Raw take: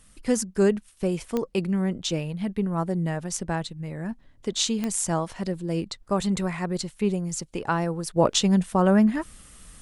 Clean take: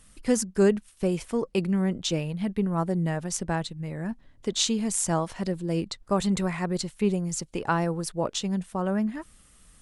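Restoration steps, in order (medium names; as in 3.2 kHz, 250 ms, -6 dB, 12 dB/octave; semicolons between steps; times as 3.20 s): de-click; trim 0 dB, from 8.16 s -8 dB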